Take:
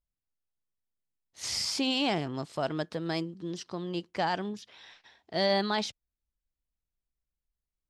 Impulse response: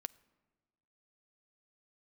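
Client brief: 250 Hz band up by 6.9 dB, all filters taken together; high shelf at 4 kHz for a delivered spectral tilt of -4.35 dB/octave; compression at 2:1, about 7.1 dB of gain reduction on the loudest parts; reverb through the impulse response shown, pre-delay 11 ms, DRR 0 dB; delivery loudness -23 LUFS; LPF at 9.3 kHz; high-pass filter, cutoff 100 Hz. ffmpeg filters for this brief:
-filter_complex "[0:a]highpass=100,lowpass=9300,equalizer=f=250:t=o:g=9,highshelf=f=4000:g=4,acompressor=threshold=0.0251:ratio=2,asplit=2[s0][s1];[1:a]atrim=start_sample=2205,adelay=11[s2];[s1][s2]afir=irnorm=-1:irlink=0,volume=1.5[s3];[s0][s3]amix=inputs=2:normalize=0,volume=2.24"

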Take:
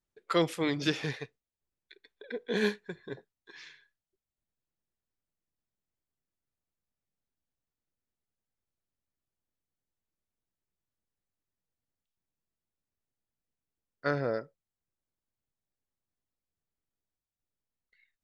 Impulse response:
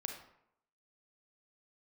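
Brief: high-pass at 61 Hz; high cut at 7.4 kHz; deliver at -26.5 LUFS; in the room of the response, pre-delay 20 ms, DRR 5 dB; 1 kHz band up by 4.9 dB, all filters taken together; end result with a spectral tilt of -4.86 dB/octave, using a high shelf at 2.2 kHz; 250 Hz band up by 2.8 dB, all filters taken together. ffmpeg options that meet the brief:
-filter_complex "[0:a]highpass=61,lowpass=7400,equalizer=f=250:t=o:g=3.5,equalizer=f=1000:t=o:g=8,highshelf=f=2200:g=-5.5,asplit=2[s0][s1];[1:a]atrim=start_sample=2205,adelay=20[s2];[s1][s2]afir=irnorm=-1:irlink=0,volume=0.631[s3];[s0][s3]amix=inputs=2:normalize=0,volume=1.41"

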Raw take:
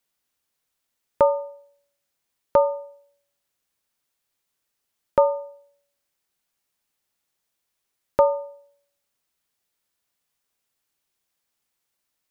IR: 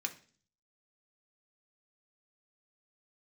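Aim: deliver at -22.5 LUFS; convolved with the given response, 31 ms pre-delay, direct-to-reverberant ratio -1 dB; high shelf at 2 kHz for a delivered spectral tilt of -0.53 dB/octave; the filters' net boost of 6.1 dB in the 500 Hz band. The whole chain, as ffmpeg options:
-filter_complex "[0:a]equalizer=f=500:t=o:g=6.5,highshelf=f=2000:g=5,asplit=2[s0][s1];[1:a]atrim=start_sample=2205,adelay=31[s2];[s1][s2]afir=irnorm=-1:irlink=0,volume=0.944[s3];[s0][s3]amix=inputs=2:normalize=0,volume=0.668"

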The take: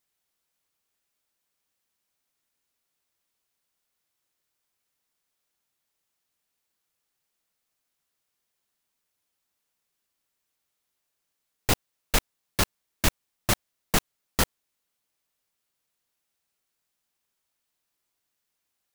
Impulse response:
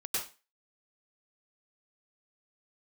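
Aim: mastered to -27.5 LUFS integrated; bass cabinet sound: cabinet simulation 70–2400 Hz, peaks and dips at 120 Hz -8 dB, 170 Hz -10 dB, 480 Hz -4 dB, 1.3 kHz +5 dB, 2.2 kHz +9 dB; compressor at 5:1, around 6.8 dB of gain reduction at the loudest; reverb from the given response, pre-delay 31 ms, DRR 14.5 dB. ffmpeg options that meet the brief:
-filter_complex "[0:a]acompressor=threshold=0.0631:ratio=5,asplit=2[s0][s1];[1:a]atrim=start_sample=2205,adelay=31[s2];[s1][s2]afir=irnorm=-1:irlink=0,volume=0.119[s3];[s0][s3]amix=inputs=2:normalize=0,highpass=f=70:w=0.5412,highpass=f=70:w=1.3066,equalizer=f=120:t=q:w=4:g=-8,equalizer=f=170:t=q:w=4:g=-10,equalizer=f=480:t=q:w=4:g=-4,equalizer=f=1300:t=q:w=4:g=5,equalizer=f=2200:t=q:w=4:g=9,lowpass=f=2400:w=0.5412,lowpass=f=2400:w=1.3066,volume=2.51"

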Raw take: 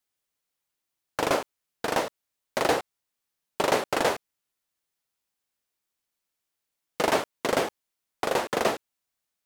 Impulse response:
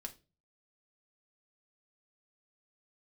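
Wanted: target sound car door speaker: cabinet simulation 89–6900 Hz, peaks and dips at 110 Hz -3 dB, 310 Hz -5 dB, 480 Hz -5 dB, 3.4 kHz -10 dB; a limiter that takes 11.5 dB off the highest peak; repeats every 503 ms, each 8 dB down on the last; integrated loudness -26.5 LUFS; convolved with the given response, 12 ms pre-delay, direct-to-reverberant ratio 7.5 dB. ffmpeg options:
-filter_complex "[0:a]alimiter=limit=0.0841:level=0:latency=1,aecho=1:1:503|1006|1509|2012|2515:0.398|0.159|0.0637|0.0255|0.0102,asplit=2[s0][s1];[1:a]atrim=start_sample=2205,adelay=12[s2];[s1][s2]afir=irnorm=-1:irlink=0,volume=0.631[s3];[s0][s3]amix=inputs=2:normalize=0,highpass=89,equalizer=f=110:t=q:w=4:g=-3,equalizer=f=310:t=q:w=4:g=-5,equalizer=f=480:t=q:w=4:g=-5,equalizer=f=3400:t=q:w=4:g=-10,lowpass=f=6900:w=0.5412,lowpass=f=6900:w=1.3066,volume=3.16"

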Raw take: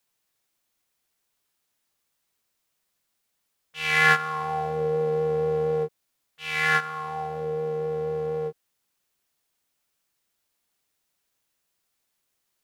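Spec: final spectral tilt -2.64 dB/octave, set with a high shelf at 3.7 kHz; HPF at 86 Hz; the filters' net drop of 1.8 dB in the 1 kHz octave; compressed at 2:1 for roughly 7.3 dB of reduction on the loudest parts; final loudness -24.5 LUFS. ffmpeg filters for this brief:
-af "highpass=86,equalizer=f=1000:t=o:g=-3,highshelf=f=3700:g=3.5,acompressor=threshold=0.0501:ratio=2,volume=1.78"

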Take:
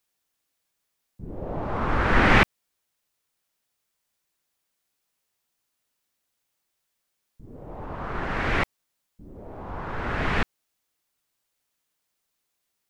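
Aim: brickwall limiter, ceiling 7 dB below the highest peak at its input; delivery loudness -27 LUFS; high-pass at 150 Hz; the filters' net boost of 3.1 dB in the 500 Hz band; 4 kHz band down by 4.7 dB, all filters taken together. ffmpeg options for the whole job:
-af "highpass=150,equalizer=f=500:t=o:g=4,equalizer=f=4000:t=o:g=-7,volume=1.06,alimiter=limit=0.251:level=0:latency=1"

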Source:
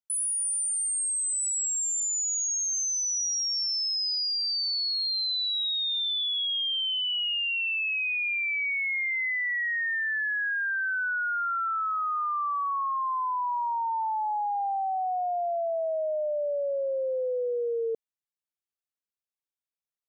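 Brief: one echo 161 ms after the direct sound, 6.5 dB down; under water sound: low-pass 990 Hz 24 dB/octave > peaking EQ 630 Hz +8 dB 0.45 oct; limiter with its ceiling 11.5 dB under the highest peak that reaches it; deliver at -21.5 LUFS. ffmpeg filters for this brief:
-af "alimiter=level_in=4.47:limit=0.0631:level=0:latency=1,volume=0.224,lowpass=f=990:w=0.5412,lowpass=f=990:w=1.3066,equalizer=f=630:t=o:w=0.45:g=8,aecho=1:1:161:0.473,volume=5.96"

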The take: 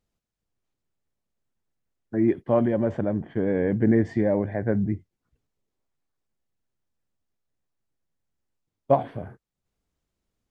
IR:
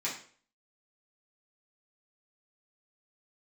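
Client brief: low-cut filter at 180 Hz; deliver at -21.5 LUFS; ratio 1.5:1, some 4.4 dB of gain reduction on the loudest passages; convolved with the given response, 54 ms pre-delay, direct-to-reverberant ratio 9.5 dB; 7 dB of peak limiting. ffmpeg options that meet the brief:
-filter_complex "[0:a]highpass=180,acompressor=threshold=0.0501:ratio=1.5,alimiter=limit=0.119:level=0:latency=1,asplit=2[s0][s1];[1:a]atrim=start_sample=2205,adelay=54[s2];[s1][s2]afir=irnorm=-1:irlink=0,volume=0.188[s3];[s0][s3]amix=inputs=2:normalize=0,volume=2.66"

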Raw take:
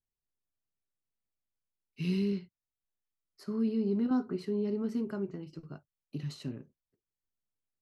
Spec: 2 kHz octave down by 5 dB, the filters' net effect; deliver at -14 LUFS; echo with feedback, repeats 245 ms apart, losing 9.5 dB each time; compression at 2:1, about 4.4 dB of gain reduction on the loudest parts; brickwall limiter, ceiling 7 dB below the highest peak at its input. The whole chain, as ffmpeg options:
-af "equalizer=f=2000:t=o:g=-7.5,acompressor=threshold=0.02:ratio=2,alimiter=level_in=2.82:limit=0.0631:level=0:latency=1,volume=0.355,aecho=1:1:245|490|735|980:0.335|0.111|0.0365|0.012,volume=23.7"

